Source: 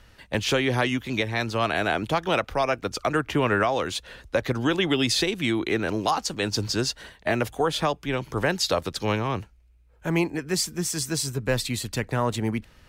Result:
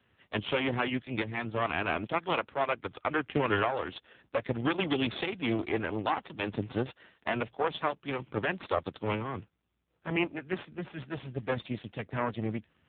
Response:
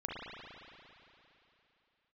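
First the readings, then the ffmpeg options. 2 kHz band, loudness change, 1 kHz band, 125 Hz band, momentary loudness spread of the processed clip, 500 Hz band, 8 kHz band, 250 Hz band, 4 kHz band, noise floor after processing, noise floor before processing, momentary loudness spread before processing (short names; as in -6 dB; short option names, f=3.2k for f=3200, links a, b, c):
-6.0 dB, -7.0 dB, -5.5 dB, -8.5 dB, 9 LU, -7.0 dB, under -40 dB, -6.5 dB, -11.5 dB, -76 dBFS, -56 dBFS, 6 LU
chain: -af "aeval=exprs='0.299*(cos(1*acos(clip(val(0)/0.299,-1,1)))-cos(1*PI/2))+0.075*(cos(4*acos(clip(val(0)/0.299,-1,1)))-cos(4*PI/2))+0.0133*(cos(7*acos(clip(val(0)/0.299,-1,1)))-cos(7*PI/2))':c=same,acrusher=bits=4:mode=log:mix=0:aa=0.000001,volume=-5dB" -ar 8000 -c:a libopencore_amrnb -b:a 5900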